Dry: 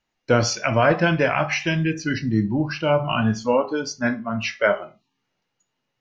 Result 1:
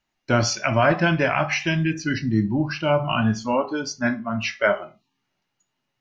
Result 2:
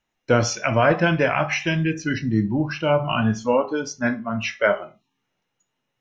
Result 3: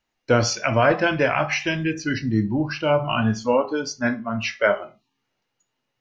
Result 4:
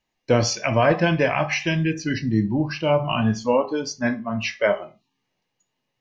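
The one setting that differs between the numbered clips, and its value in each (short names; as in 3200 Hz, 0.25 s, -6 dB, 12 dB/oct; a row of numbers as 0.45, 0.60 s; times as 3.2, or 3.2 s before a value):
notch, frequency: 480, 4600, 170, 1400 Hz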